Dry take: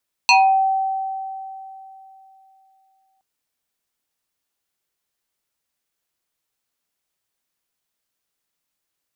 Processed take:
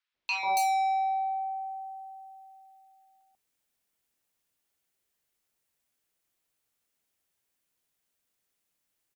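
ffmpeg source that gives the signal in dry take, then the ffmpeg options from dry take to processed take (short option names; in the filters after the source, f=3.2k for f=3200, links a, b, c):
-f lavfi -i "aevalsrc='0.376*pow(10,-3*t/3.16)*sin(2*PI*770*t+2.9*pow(10,-3*t/0.39)*sin(2*PI*2.25*770*t))':d=2.92:s=44100"
-filter_complex "[0:a]asoftclip=type=tanh:threshold=-23.5dB,acrossover=split=1100|4500[a][b][c];[a]adelay=140[d];[c]adelay=280[e];[d][b][e]amix=inputs=3:normalize=0"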